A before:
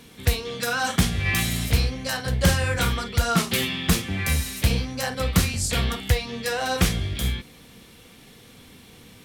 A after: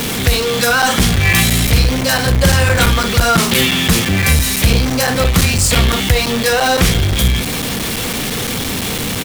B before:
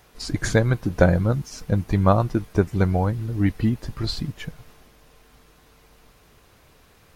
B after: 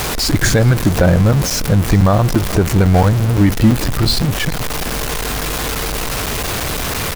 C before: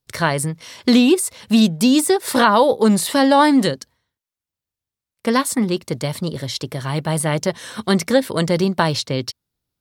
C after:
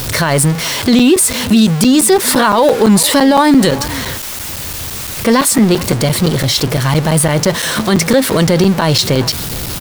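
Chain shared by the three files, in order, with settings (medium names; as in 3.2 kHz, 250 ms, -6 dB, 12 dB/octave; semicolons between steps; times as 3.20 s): jump at every zero crossing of -23 dBFS; on a send: delay 418 ms -22.5 dB; on the sum: loudness maximiser +9.5 dB; crackling interface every 0.17 s, samples 256, zero, from 0.82 s; trim -1 dB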